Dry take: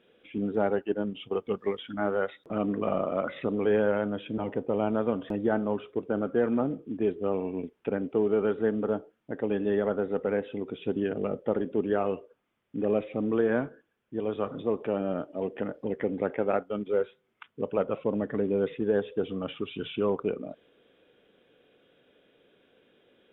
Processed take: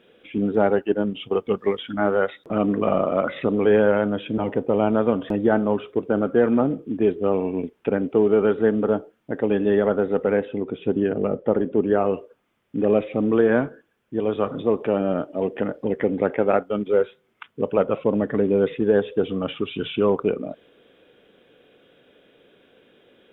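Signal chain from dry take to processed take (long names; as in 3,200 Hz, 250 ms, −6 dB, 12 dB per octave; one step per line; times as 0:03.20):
0:10.45–0:12.14: low-pass filter 1,800 Hz 6 dB per octave
level +7.5 dB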